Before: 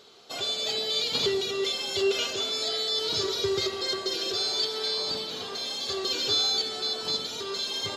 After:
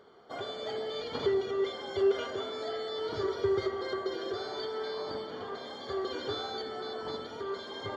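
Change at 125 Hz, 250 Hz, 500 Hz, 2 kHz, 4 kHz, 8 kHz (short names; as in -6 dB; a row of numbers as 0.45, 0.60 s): -2.0 dB, -0.5 dB, 0.0 dB, -6.0 dB, -16.0 dB, under -20 dB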